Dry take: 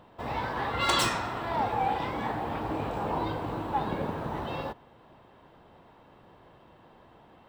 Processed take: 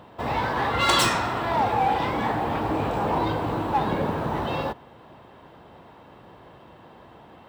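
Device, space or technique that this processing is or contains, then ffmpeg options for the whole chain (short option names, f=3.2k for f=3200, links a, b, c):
parallel distortion: -filter_complex "[0:a]highpass=48,asplit=2[a][b];[b]asoftclip=type=hard:threshold=-30dB,volume=-5dB[c];[a][c]amix=inputs=2:normalize=0,volume=3.5dB"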